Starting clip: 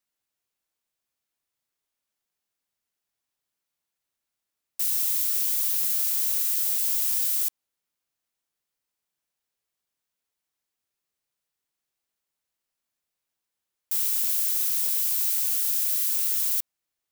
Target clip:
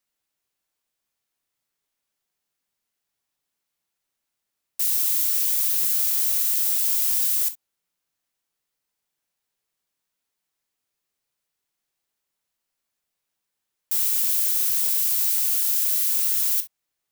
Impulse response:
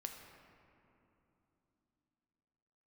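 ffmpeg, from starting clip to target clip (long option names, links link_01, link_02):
-filter_complex "[0:a]asplit=3[link_01][link_02][link_03];[link_01]afade=type=out:start_time=15.16:duration=0.02[link_04];[link_02]asubboost=boost=8:cutoff=74,afade=type=in:start_time=15.16:duration=0.02,afade=type=out:start_time=15.76:duration=0.02[link_05];[link_03]afade=type=in:start_time=15.76:duration=0.02[link_06];[link_04][link_05][link_06]amix=inputs=3:normalize=0[link_07];[1:a]atrim=start_sample=2205,atrim=end_sample=3087[link_08];[link_07][link_08]afir=irnorm=-1:irlink=0,volume=7dB"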